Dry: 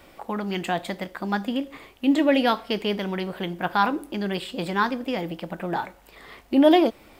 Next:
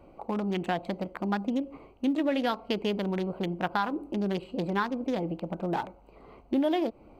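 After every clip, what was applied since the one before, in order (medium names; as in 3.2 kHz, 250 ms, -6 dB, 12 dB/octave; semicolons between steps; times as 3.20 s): local Wiener filter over 25 samples; compression 6:1, threshold -24 dBFS, peak gain reduction 12 dB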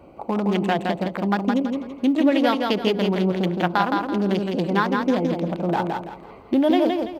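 high-pass 60 Hz; on a send: feedback delay 166 ms, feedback 32%, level -4 dB; on the sum: trim +7 dB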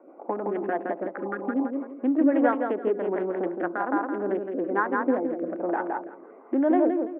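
elliptic band-pass 280–1700 Hz, stop band 50 dB; spectral replace 1.18–1.63 s, 520–1200 Hz after; rotary cabinet horn 6 Hz, later 1.2 Hz, at 1.54 s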